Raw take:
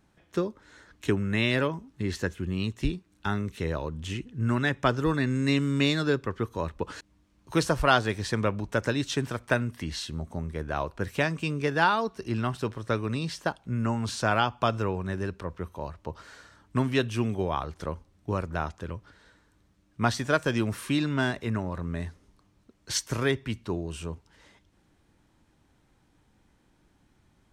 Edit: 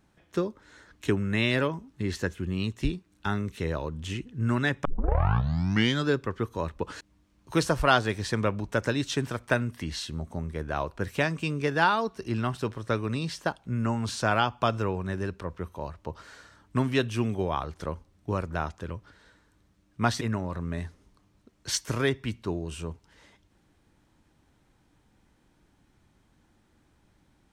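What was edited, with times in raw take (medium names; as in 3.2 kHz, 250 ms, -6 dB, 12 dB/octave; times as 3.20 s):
4.85 s: tape start 1.22 s
20.21–21.43 s: delete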